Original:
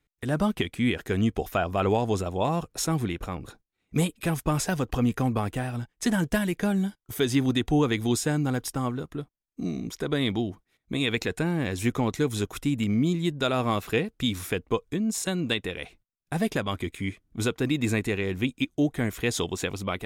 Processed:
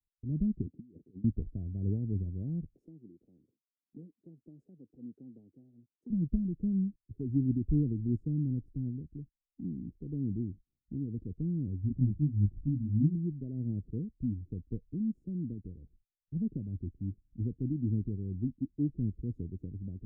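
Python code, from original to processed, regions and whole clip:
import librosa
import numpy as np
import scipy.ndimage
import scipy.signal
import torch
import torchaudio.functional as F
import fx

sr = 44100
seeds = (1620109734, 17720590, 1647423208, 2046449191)

y = fx.chain(x, sr, fx.highpass(hz=240.0, slope=12),
    fx.over_compress(threshold_db=-34.0, ratio=-0.5), at=(0.66, 1.24))
y = fx.chain(y, sr, fx.highpass(hz=450.0, slope=12),
    fx.band_squash(depth_pct=40), at=(2.75, 6.1))
y = fx.chain(y, sr, fx.comb(ms=1.1, depth=0.99),
    fx.detune_double(cents=28), at=(11.81, 13.15))
y = scipy.signal.sosfilt(scipy.signal.cheby2(4, 60, 1000.0, 'lowpass', fs=sr, output='sos'), y)
y = fx.low_shelf(y, sr, hz=110.0, db=10.0)
y = fx.band_widen(y, sr, depth_pct=40)
y = y * librosa.db_to_amplitude(-7.0)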